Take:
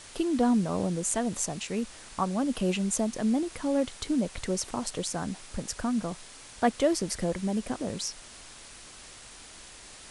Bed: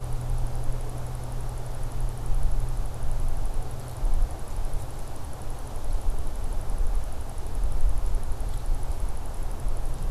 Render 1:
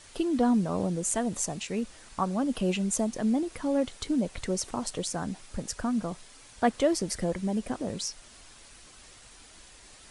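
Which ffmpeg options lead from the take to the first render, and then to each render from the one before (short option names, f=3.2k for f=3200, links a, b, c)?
-af "afftdn=nr=6:nf=-48"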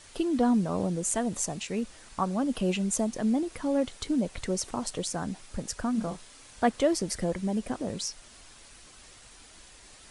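-filter_complex "[0:a]asettb=1/sr,asplit=3[a][b][c];[a]atrim=end=5.924[d];[b]atrim=start=5.92:end=6.65,asetpts=PTS-STARTPTS,afade=t=in:d=0.004:c=qsin,afade=t=out:st=0.726:d=0.004:c=qsin,asplit=2[e][f];[f]adelay=31,volume=-7dB[g];[e][g]amix=inputs=2:normalize=0,atrim=end_sample=32193[h];[c]atrim=start=6.646[i];[d][h]acrossfade=d=0.004:c1=hsin:c2=qsin[j];[j][i]acrossfade=d=0.004:c1=qsin:c2=hsin"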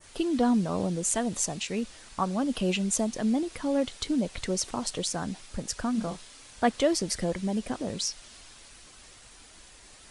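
-af "adynamicequalizer=threshold=0.00355:dfrequency=3900:dqfactor=0.74:tfrequency=3900:tqfactor=0.74:attack=5:release=100:ratio=0.375:range=2.5:mode=boostabove:tftype=bell"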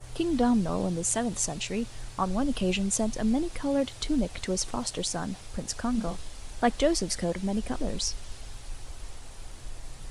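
-filter_complex "[1:a]volume=-13dB[a];[0:a][a]amix=inputs=2:normalize=0"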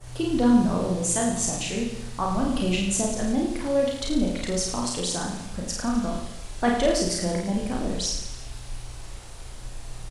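-filter_complex "[0:a]asplit=2[a][b];[b]adelay=34,volume=-4dB[c];[a][c]amix=inputs=2:normalize=0,asplit=2[d][e];[e]aecho=0:1:50|107.5|173.6|249.7|337.1:0.631|0.398|0.251|0.158|0.1[f];[d][f]amix=inputs=2:normalize=0"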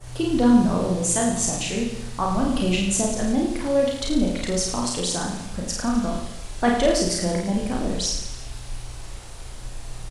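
-af "volume=2.5dB"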